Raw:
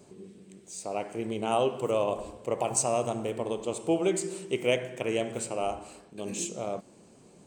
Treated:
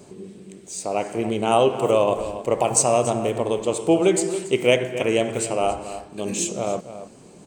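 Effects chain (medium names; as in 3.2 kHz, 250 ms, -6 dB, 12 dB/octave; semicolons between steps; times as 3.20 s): echo from a far wall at 48 m, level -12 dB; trim +8.5 dB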